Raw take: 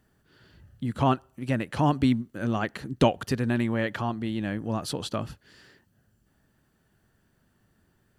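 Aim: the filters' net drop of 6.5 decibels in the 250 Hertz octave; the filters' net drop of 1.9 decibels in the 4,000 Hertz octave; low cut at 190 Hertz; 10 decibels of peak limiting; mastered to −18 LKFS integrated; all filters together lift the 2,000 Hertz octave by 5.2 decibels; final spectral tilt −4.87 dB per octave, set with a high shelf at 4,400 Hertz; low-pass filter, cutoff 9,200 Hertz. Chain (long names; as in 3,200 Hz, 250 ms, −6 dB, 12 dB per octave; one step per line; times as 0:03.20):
high-pass filter 190 Hz
low-pass filter 9,200 Hz
parametric band 250 Hz −6 dB
parametric band 2,000 Hz +7.5 dB
parametric band 4,000 Hz −8 dB
high-shelf EQ 4,400 Hz +4 dB
level +15 dB
brickwall limiter −4 dBFS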